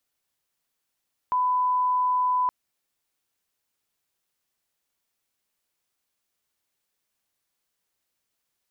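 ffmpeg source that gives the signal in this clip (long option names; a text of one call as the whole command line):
ffmpeg -f lavfi -i "sine=frequency=1000:duration=1.17:sample_rate=44100,volume=-1.94dB" out.wav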